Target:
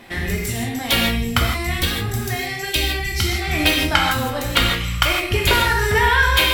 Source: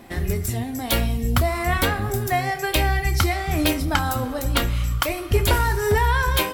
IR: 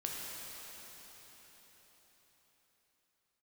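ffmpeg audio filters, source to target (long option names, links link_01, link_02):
-filter_complex "[0:a]equalizer=frequency=2600:width_type=o:width=2.1:gain=10,asettb=1/sr,asplit=3[link_01][link_02][link_03];[link_01]atrim=end=1.424[link_04];[link_02]atrim=start=1.42:end=3.42,asetpts=PTS-STARTPTS,afade=type=in:duration=0.004:curve=qsin,afade=type=out:start_time=1.996:duration=0.004:curve=qsin,acrossover=split=390|3000[link_05][link_06][link_07];[link_06]acompressor=threshold=-32dB:ratio=4[link_08];[link_05][link_08][link_07]amix=inputs=3:normalize=0[link_09];[link_03]atrim=start=3.416[link_10];[link_04][link_09]acrossfade=duration=0.004:curve1=hsin:curve2=qsin[link_11];[link_11][link_10]acrossfade=duration=0.004:curve1=qsin:curve2=hsin[link_12];[1:a]atrim=start_sample=2205,afade=type=out:start_time=0.27:duration=0.01,atrim=end_sample=12348,asetrate=57330,aresample=44100[link_13];[link_12][link_13]afir=irnorm=-1:irlink=0,volume=3dB"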